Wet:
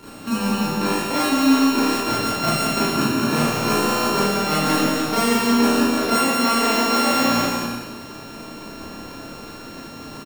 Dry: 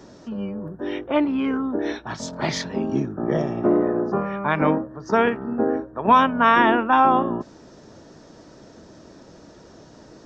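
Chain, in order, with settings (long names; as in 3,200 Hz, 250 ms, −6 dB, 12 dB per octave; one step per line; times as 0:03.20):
samples sorted by size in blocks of 32 samples
reversed playback
downward compressor 4 to 1, threshold −27 dBFS, peak gain reduction 14.5 dB
reversed playback
transient designer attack +5 dB, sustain −2 dB
bouncing-ball delay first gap 180 ms, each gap 0.65×, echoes 5
four-comb reverb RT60 0.53 s, combs from 26 ms, DRR −7 dB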